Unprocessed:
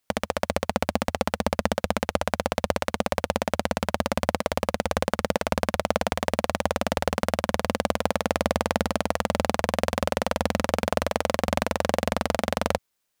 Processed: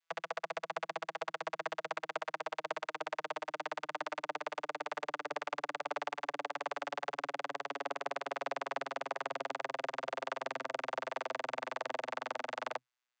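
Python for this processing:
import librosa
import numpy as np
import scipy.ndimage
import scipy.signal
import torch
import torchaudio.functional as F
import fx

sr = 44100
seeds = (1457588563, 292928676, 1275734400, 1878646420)

y = fx.vocoder_glide(x, sr, note=52, semitones=-5)
y = scipy.signal.sosfilt(scipy.signal.butter(2, 1300.0, 'highpass', fs=sr, output='sos'), y)
y = fx.high_shelf(y, sr, hz=5100.0, db=-4.5)
y = F.gain(torch.from_numpy(y), 1.5).numpy()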